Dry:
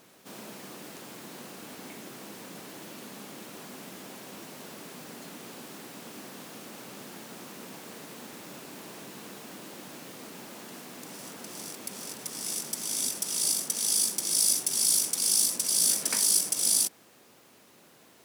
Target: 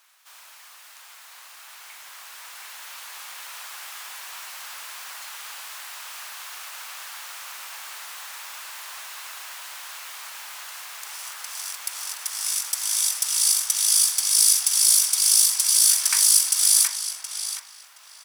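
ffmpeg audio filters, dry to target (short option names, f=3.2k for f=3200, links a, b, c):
-filter_complex "[0:a]highpass=f=1k:w=0.5412,highpass=f=1k:w=1.3066,asplit=2[a][b];[b]adelay=721,lowpass=f=3k:p=1,volume=-4dB,asplit=2[c][d];[d]adelay=721,lowpass=f=3k:p=1,volume=0.31,asplit=2[e][f];[f]adelay=721,lowpass=f=3k:p=1,volume=0.31,asplit=2[g][h];[h]adelay=721,lowpass=f=3k:p=1,volume=0.31[i];[a][c][e][g][i]amix=inputs=5:normalize=0,dynaudnorm=f=290:g=17:m=9dB"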